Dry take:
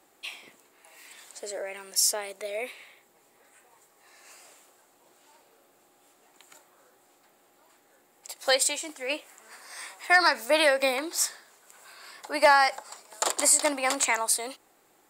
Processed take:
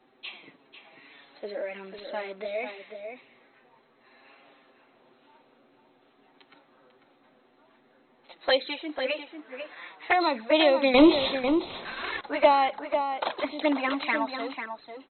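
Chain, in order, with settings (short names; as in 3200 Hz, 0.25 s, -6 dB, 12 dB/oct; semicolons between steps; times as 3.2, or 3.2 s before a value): bell 220 Hz +9 dB 1.3 oct; 10.94–12.21 sample leveller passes 5; envelope flanger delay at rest 8.1 ms, full sweep at -17.5 dBFS; brick-wall FIR low-pass 4200 Hz; outdoor echo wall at 85 m, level -7 dB; gain +2 dB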